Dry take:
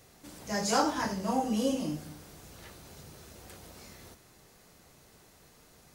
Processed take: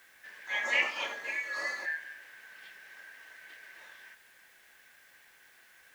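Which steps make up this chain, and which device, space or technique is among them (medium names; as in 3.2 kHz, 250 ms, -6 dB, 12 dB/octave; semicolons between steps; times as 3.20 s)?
0.82–1.86 s: tilt shelf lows -8 dB, about 1.5 kHz; split-band scrambled radio (four frequency bands reordered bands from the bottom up 4123; band-pass 390–3100 Hz; white noise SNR 27 dB)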